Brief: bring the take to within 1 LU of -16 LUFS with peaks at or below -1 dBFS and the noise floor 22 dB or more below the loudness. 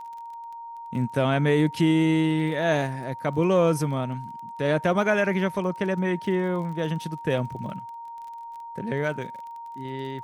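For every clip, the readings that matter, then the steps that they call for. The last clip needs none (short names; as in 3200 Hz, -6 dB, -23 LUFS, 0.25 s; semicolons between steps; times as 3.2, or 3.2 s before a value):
ticks 28/s; steady tone 930 Hz; tone level -36 dBFS; loudness -25.0 LUFS; peak -10.5 dBFS; loudness target -16.0 LUFS
-> de-click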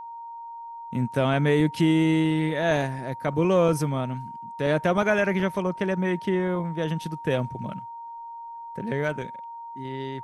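ticks 0/s; steady tone 930 Hz; tone level -36 dBFS
-> notch 930 Hz, Q 30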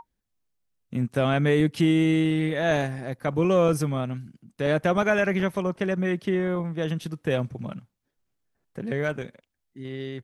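steady tone none; loudness -25.0 LUFS; peak -10.5 dBFS; loudness target -16.0 LUFS
-> gain +9 dB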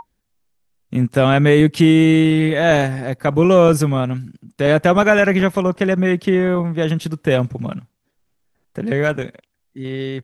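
loudness -16.0 LUFS; peak -1.5 dBFS; noise floor -71 dBFS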